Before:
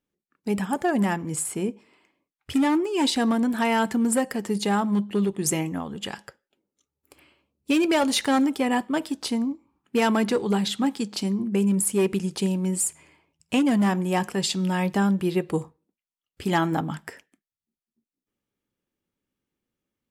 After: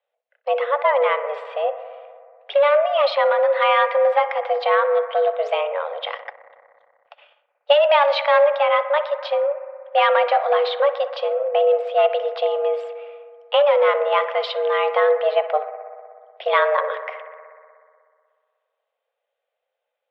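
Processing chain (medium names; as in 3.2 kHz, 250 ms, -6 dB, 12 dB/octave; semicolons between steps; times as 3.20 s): mistuned SSB +290 Hz 190–3300 Hz; bucket-brigade echo 61 ms, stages 1024, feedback 82%, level -14.5 dB; 6.18–7.73 s: transient shaper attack +4 dB, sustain -8 dB; trim +5.5 dB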